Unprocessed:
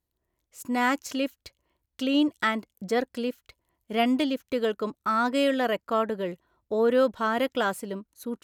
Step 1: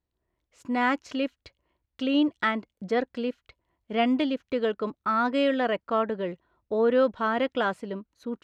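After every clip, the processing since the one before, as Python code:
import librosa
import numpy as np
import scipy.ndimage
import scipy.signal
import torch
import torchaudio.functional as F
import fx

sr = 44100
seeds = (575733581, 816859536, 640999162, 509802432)

y = scipy.signal.sosfilt(scipy.signal.butter(2, 3600.0, 'lowpass', fs=sr, output='sos'), x)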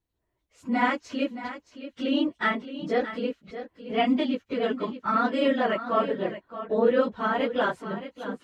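y = fx.phase_scramble(x, sr, seeds[0], window_ms=50)
y = y + 10.0 ** (-12.0 / 20.0) * np.pad(y, (int(621 * sr / 1000.0), 0))[:len(y)]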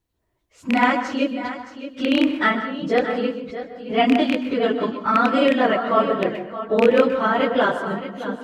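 y = fx.rattle_buzz(x, sr, strikes_db=-28.0, level_db=-16.0)
y = fx.rev_plate(y, sr, seeds[1], rt60_s=0.52, hf_ratio=0.5, predelay_ms=115, drr_db=9.5)
y = y * librosa.db_to_amplitude(6.0)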